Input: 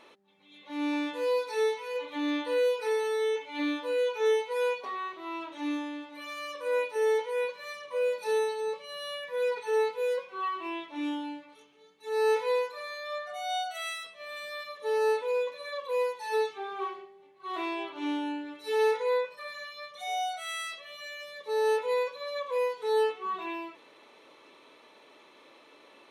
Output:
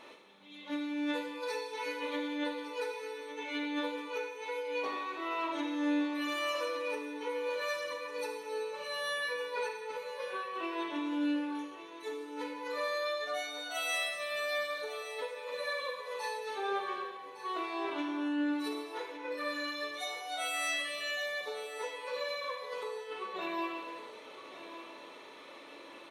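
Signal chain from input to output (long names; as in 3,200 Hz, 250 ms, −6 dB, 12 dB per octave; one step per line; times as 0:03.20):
compressor whose output falls as the input rises −37 dBFS, ratio −1
repeating echo 1,159 ms, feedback 28%, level −13 dB
reverb whose tail is shaped and stops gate 490 ms falling, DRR 0 dB
level −3.5 dB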